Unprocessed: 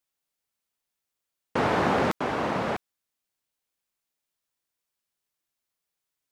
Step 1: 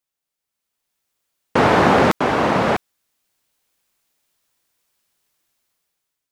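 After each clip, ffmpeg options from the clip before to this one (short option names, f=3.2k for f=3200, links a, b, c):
-af "dynaudnorm=f=240:g=7:m=14dB"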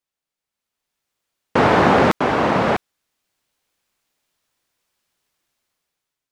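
-af "highshelf=f=7.9k:g=-8"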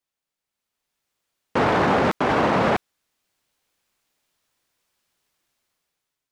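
-af "alimiter=limit=-11.5dB:level=0:latency=1:release=13"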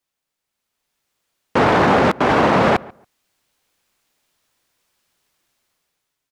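-filter_complex "[0:a]asplit=2[a][b];[b]adelay=140,lowpass=f=1.7k:p=1,volume=-21.5dB,asplit=2[c][d];[d]adelay=140,lowpass=f=1.7k:p=1,volume=0.19[e];[a][c][e]amix=inputs=3:normalize=0,volume=5dB"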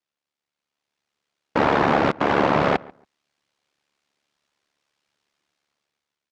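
-af "highpass=110,lowpass=5.7k,aeval=exprs='val(0)*sin(2*PI*36*n/s)':c=same,volume=-1.5dB"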